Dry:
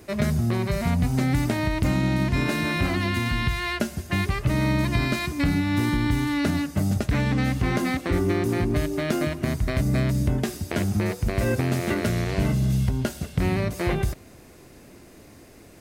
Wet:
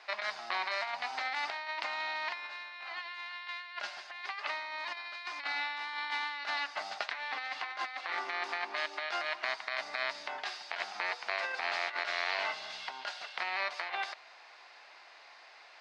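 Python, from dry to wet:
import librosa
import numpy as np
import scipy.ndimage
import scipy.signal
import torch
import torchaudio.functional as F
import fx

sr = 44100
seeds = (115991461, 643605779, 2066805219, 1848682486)

y = scipy.signal.sosfilt(scipy.signal.cheby1(3, 1.0, [800.0, 4600.0], 'bandpass', fs=sr, output='sos'), x)
y = fx.over_compress(y, sr, threshold_db=-36.0, ratio=-0.5)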